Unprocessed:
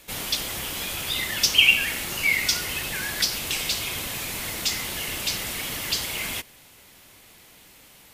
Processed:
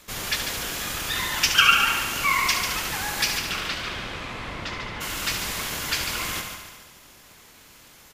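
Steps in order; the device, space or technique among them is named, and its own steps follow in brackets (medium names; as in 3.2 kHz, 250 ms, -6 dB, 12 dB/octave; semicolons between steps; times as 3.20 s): 3.37–5.00 s: low-pass 4.5 kHz -> 2.4 kHz 12 dB/octave; multi-head delay 72 ms, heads first and second, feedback 57%, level -9 dB; octave pedal (harmony voices -12 st -1 dB); trim -3 dB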